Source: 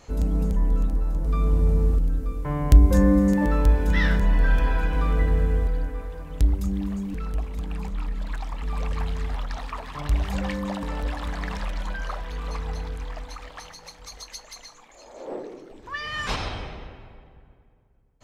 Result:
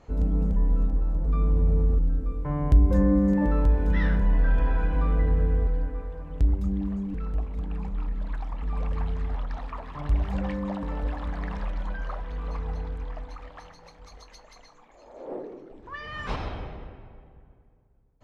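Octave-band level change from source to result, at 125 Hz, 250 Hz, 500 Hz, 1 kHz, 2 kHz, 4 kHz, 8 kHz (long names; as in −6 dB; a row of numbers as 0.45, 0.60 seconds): −2.0 dB, −2.0 dB, −2.5 dB, −4.0 dB, −7.0 dB, −11.0 dB, can't be measured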